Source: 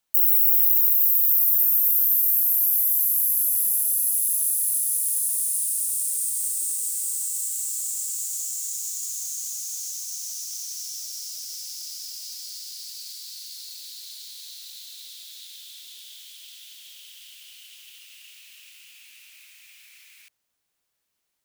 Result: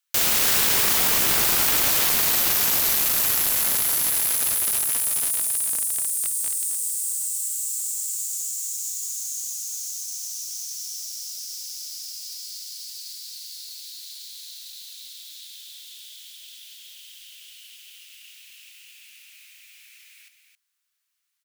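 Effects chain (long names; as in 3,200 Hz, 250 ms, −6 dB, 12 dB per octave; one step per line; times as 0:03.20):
high-pass filter 1,200 Hz 24 dB per octave
wrap-around overflow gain 15 dB
single-tap delay 268 ms −8 dB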